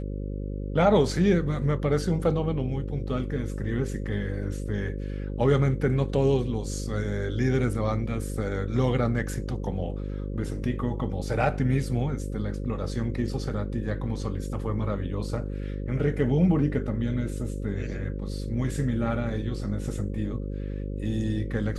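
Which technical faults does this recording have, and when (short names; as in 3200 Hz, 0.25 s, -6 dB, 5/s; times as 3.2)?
buzz 50 Hz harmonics 11 -32 dBFS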